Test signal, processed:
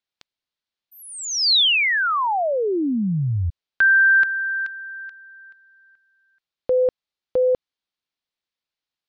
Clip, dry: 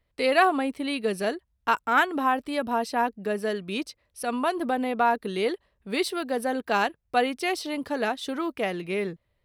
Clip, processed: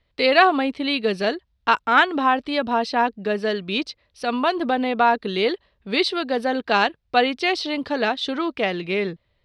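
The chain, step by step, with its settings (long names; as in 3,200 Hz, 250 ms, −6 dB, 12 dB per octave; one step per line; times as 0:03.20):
low-pass with resonance 4,100 Hz, resonance Q 1.9
level +4.5 dB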